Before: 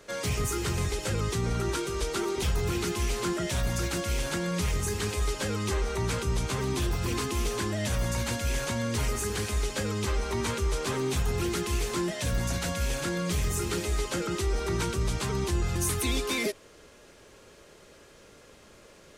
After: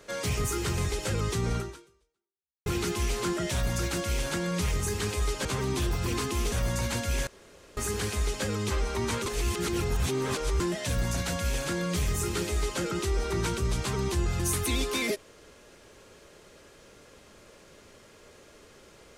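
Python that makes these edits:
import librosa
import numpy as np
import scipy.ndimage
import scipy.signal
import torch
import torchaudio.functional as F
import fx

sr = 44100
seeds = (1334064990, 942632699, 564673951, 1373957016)

y = fx.edit(x, sr, fx.fade_out_span(start_s=1.57, length_s=1.09, curve='exp'),
    fx.cut(start_s=5.45, length_s=1.0),
    fx.cut(start_s=7.52, length_s=0.36),
    fx.room_tone_fill(start_s=8.63, length_s=0.5),
    fx.reverse_span(start_s=10.62, length_s=1.34), tone=tone)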